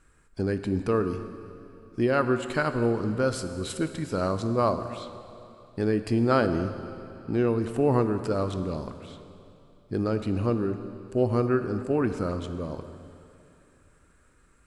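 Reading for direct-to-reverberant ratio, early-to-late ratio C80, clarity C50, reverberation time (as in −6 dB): 9.0 dB, 10.5 dB, 10.0 dB, 2.9 s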